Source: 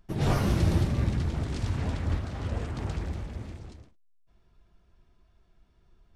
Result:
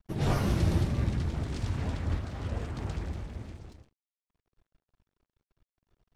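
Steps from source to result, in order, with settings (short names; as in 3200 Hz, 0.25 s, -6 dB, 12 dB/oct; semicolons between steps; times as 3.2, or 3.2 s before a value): crossover distortion -57 dBFS; gain -2 dB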